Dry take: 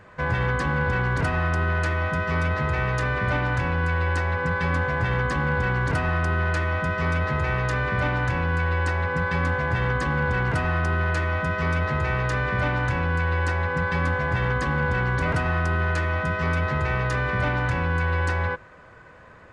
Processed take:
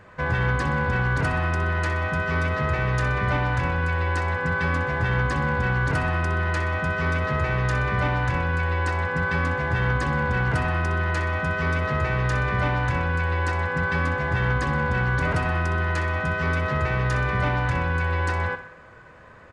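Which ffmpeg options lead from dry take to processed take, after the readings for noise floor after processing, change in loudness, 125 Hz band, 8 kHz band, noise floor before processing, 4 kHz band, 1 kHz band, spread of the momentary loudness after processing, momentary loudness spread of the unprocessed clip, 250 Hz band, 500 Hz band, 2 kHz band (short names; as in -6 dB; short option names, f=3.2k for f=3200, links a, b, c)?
-46 dBFS, 0.0 dB, +0.5 dB, +0.5 dB, -48 dBFS, +0.5 dB, +0.5 dB, 2 LU, 1 LU, 0.0 dB, -0.5 dB, +0.5 dB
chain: -af "aecho=1:1:63|126|189|252|315|378:0.266|0.141|0.0747|0.0396|0.021|0.0111"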